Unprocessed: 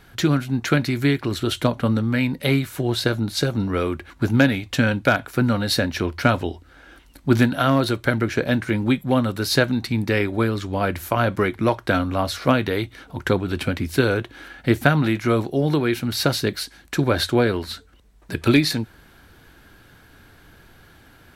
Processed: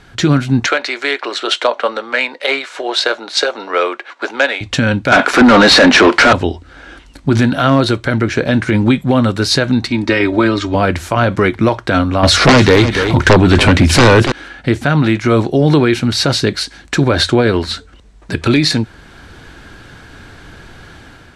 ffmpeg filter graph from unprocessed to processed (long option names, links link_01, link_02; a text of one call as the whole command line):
ffmpeg -i in.wav -filter_complex "[0:a]asettb=1/sr,asplit=3[link_01][link_02][link_03];[link_01]atrim=end=0.664[link_04];[link_02]atrim=start=0.66:end=4.61,asetpts=PTS-STARTPTS,afade=type=in:duration=0.004:curve=qsin,afade=type=out:start_time=3.946:duration=0.004:curve=qsin,highpass=frequency=490:width=0.5412,highpass=frequency=490:width=1.3066,adynamicsmooth=sensitivity=1.5:basefreq=5800[link_05];[link_03]atrim=start=4.606[link_06];[link_04][link_05]acrossfade=duration=0.004:curve1=hsin:curve2=qsin[link_07];[link_07][link_06]acrossfade=duration=0.004:curve1=qsin:curve2=hsin,asettb=1/sr,asplit=3[link_08][link_09][link_10];[link_08]atrim=end=5.124[link_11];[link_09]atrim=start=5.12:end=6.33,asetpts=PTS-STARTPTS,afade=type=in:duration=0.004:curve=qsin,afade=type=out:start_time=1.206:duration=0.004:curve=qsin,highpass=frequency=200:width=0.5412,highpass=frequency=200:width=1.3066,asplit=2[link_12][link_13];[link_13]highpass=frequency=720:poles=1,volume=30dB,asoftclip=type=tanh:threshold=-4.5dB[link_14];[link_12][link_14]amix=inputs=2:normalize=0,lowpass=frequency=2100:poles=1,volume=-6dB[link_15];[link_10]atrim=start=6.326[link_16];[link_11][link_15]acrossfade=duration=0.004:curve1=hsin:curve2=qsin[link_17];[link_17][link_16]acrossfade=duration=0.004:curve1=qsin:curve2=hsin,asettb=1/sr,asplit=3[link_18][link_19][link_20];[link_18]atrim=end=9.884[link_21];[link_19]atrim=start=9.88:end=10.75,asetpts=PTS-STARTPTS,afade=type=in:duration=0.004:curve=qsin,afade=type=out:start_time=0.866:duration=0.004:curve=qsin,lowpass=6900,equalizer=frequency=130:width=0.82:gain=-7,aecho=1:1:3.2:0.67,atrim=end_sample=38367[link_22];[link_20]atrim=start=10.746[link_23];[link_21][link_22]acrossfade=duration=0.004:curve1=hsin:curve2=qsin[link_24];[link_24][link_23]acrossfade=duration=0.004:curve1=qsin:curve2=hsin,asettb=1/sr,asplit=3[link_25][link_26][link_27];[link_25]atrim=end=12.234[link_28];[link_26]atrim=start=12.23:end=14.32,asetpts=PTS-STARTPTS,afade=type=in:duration=0.004:curve=qsin,afade=type=out:start_time=2.086:duration=0.004:curve=qsin,aeval=exprs='0.631*sin(PI/2*3.98*val(0)/0.631)':channel_layout=same,aecho=1:1:287:0.188,atrim=end_sample=92169[link_29];[link_27]atrim=start=14.316[link_30];[link_28][link_29]acrossfade=duration=0.004:curve1=hsin:curve2=qsin[link_31];[link_31][link_30]acrossfade=duration=0.004:curve1=qsin:curve2=hsin,dynaudnorm=framelen=160:gausssize=5:maxgain=6dB,lowpass=frequency=8600:width=0.5412,lowpass=frequency=8600:width=1.3066,alimiter=level_in=8dB:limit=-1dB:release=50:level=0:latency=1,volume=-1dB" out.wav